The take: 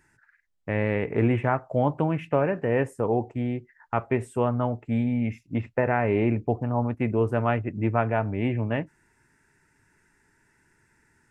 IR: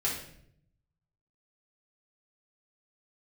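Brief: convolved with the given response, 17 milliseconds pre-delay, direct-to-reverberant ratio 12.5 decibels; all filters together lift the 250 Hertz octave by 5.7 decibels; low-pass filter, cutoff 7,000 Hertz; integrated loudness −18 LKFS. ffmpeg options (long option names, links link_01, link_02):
-filter_complex "[0:a]lowpass=7000,equalizer=frequency=250:width_type=o:gain=6.5,asplit=2[link_01][link_02];[1:a]atrim=start_sample=2205,adelay=17[link_03];[link_02][link_03]afir=irnorm=-1:irlink=0,volume=-19dB[link_04];[link_01][link_04]amix=inputs=2:normalize=0,volume=5dB"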